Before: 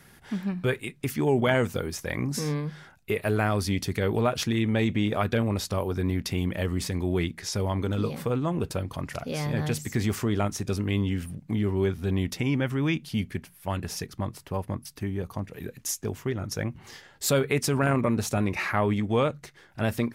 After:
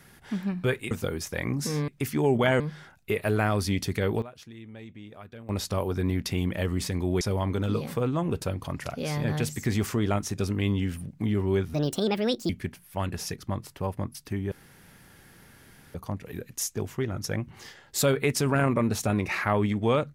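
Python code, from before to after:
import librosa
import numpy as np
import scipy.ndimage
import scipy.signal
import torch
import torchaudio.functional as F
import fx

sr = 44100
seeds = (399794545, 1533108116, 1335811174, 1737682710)

y = fx.edit(x, sr, fx.move(start_s=0.91, length_s=0.72, to_s=2.6),
    fx.fade_down_up(start_s=3.87, length_s=1.97, db=-19.5, fade_s=0.35, curve='log'),
    fx.cut(start_s=7.21, length_s=0.29),
    fx.speed_span(start_s=12.03, length_s=1.17, speed=1.55),
    fx.insert_room_tone(at_s=15.22, length_s=1.43), tone=tone)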